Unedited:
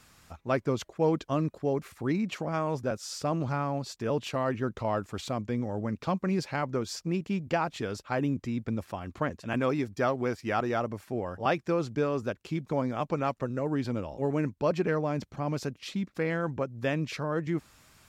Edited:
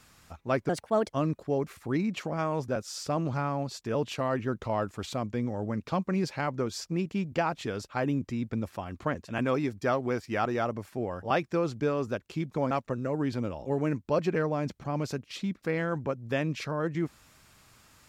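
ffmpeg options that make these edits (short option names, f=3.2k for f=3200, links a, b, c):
-filter_complex "[0:a]asplit=4[a][b][c][d];[a]atrim=end=0.694[e];[b]atrim=start=0.69:end=1.25,asetpts=PTS-STARTPTS,asetrate=60417,aresample=44100,atrim=end_sample=18026,asetpts=PTS-STARTPTS[f];[c]atrim=start=1.246:end=12.862[g];[d]atrim=start=13.228[h];[e][f]acrossfade=d=0.004:c1=hsin:c2=hsin[i];[i][g]acrossfade=d=0.004:c1=hsin:c2=hsin[j];[j][h]acrossfade=d=0.004:c1=hsin:c2=hsin"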